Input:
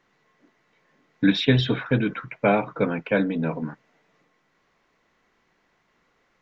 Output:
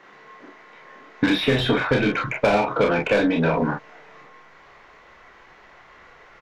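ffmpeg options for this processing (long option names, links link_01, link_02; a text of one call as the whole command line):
ffmpeg -i in.wav -filter_complex "[0:a]asubboost=boost=9:cutoff=75,asplit=2[link_01][link_02];[link_02]highpass=frequency=720:poles=1,volume=22dB,asoftclip=type=tanh:threshold=-7dB[link_03];[link_01][link_03]amix=inputs=2:normalize=0,lowpass=frequency=1400:poles=1,volume=-6dB,asplit=2[link_04][link_05];[link_05]aecho=0:1:29|43:0.668|0.501[link_06];[link_04][link_06]amix=inputs=2:normalize=0,acrossover=split=850|2600[link_07][link_08][link_09];[link_07]acompressor=threshold=-23dB:ratio=4[link_10];[link_08]acompressor=threshold=-36dB:ratio=4[link_11];[link_09]acompressor=threshold=-35dB:ratio=4[link_12];[link_10][link_11][link_12]amix=inputs=3:normalize=0,volume=5dB" out.wav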